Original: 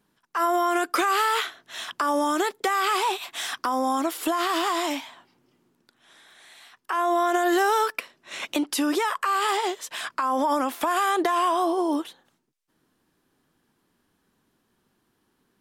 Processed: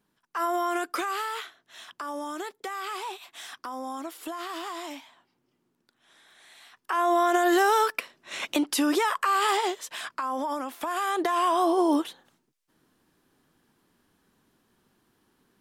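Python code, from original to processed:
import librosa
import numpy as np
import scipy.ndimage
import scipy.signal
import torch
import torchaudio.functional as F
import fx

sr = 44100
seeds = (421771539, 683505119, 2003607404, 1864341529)

y = fx.gain(x, sr, db=fx.line((0.73, -4.5), (1.46, -11.0), (5.03, -11.0), (7.09, 0.0), (9.54, 0.0), (10.66, -8.5), (11.82, 2.0)))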